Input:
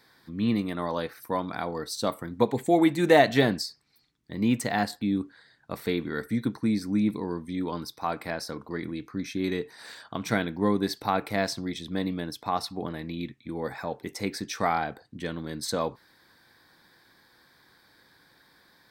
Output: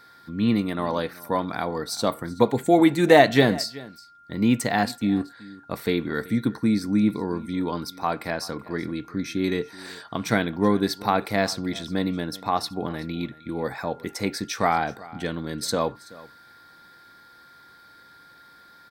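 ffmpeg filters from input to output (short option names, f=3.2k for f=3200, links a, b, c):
-af "aecho=1:1:379:0.0944,aeval=exprs='val(0)+0.002*sin(2*PI*1400*n/s)':c=same,volume=4dB"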